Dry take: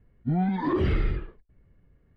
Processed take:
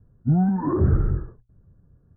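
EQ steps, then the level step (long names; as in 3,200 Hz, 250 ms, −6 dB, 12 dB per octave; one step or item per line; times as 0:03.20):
Butterworth low-pass 1,600 Hz 72 dB per octave
parametric band 110 Hz +10.5 dB 1.6 octaves
mains-hum notches 60/120 Hz
0.0 dB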